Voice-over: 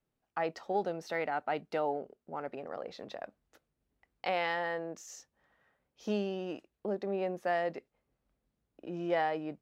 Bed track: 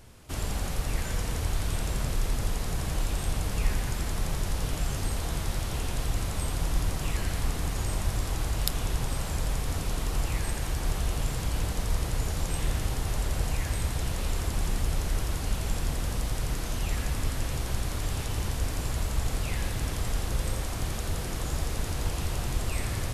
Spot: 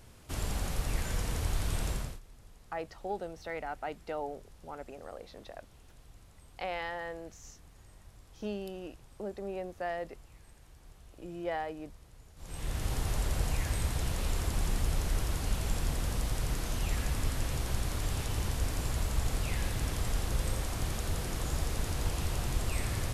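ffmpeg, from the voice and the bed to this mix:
-filter_complex "[0:a]adelay=2350,volume=0.596[s0];[1:a]volume=11.2,afade=t=out:st=1.89:d=0.31:silence=0.0668344,afade=t=in:st=12.36:d=0.6:silence=0.0630957[s1];[s0][s1]amix=inputs=2:normalize=0"

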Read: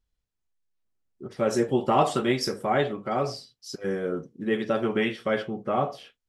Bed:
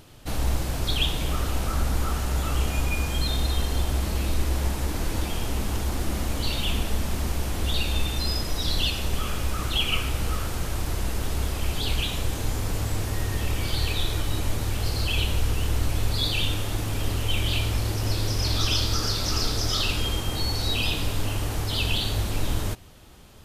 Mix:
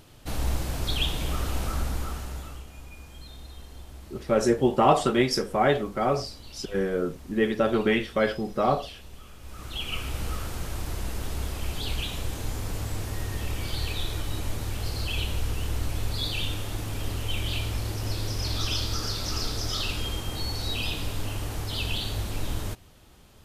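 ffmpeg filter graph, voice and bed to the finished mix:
-filter_complex "[0:a]adelay=2900,volume=1.26[s0];[1:a]volume=3.98,afade=t=out:st=1.65:d=0.99:silence=0.149624,afade=t=in:st=9.4:d=0.78:silence=0.188365[s1];[s0][s1]amix=inputs=2:normalize=0"

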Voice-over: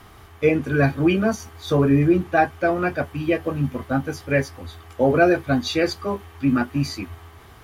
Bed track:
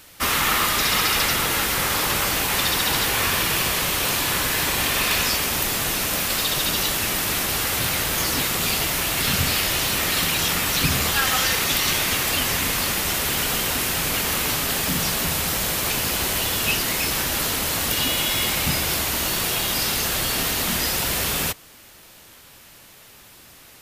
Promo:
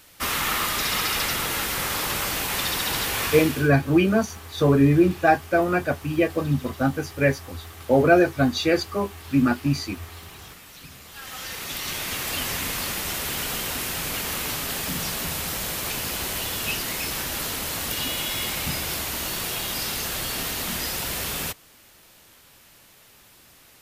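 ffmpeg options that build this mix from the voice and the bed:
-filter_complex "[0:a]adelay=2900,volume=1[s0];[1:a]volume=4.73,afade=t=out:st=3.25:d=0.45:silence=0.112202,afade=t=in:st=11.08:d=1.34:silence=0.125893[s1];[s0][s1]amix=inputs=2:normalize=0"

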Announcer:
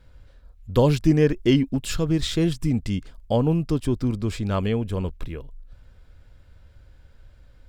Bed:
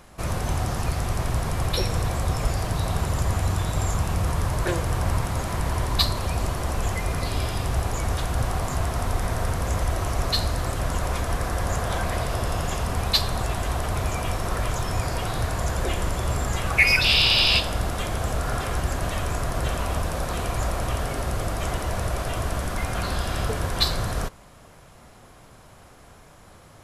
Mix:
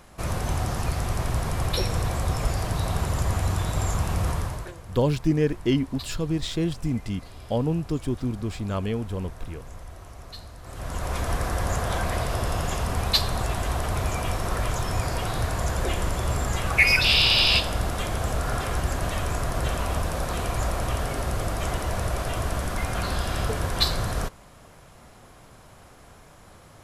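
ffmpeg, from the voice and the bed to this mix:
-filter_complex "[0:a]adelay=4200,volume=0.631[s0];[1:a]volume=6.68,afade=t=out:st=4.29:d=0.43:silence=0.141254,afade=t=in:st=10.62:d=0.65:silence=0.133352[s1];[s0][s1]amix=inputs=2:normalize=0"

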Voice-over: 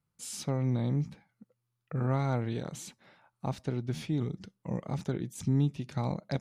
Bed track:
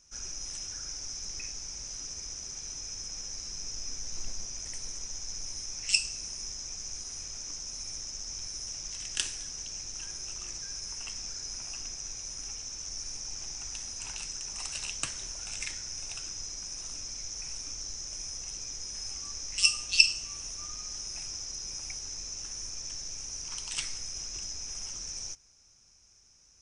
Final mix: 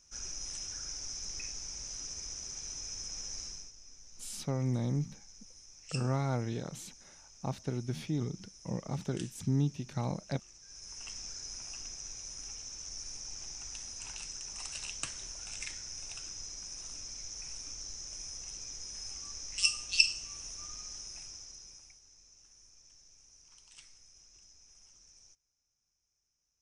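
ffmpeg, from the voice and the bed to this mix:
-filter_complex "[0:a]adelay=4000,volume=0.75[s0];[1:a]volume=3.16,afade=t=out:st=3.42:d=0.3:silence=0.188365,afade=t=in:st=10.62:d=0.49:silence=0.251189,afade=t=out:st=20.78:d=1.21:silence=0.149624[s1];[s0][s1]amix=inputs=2:normalize=0"

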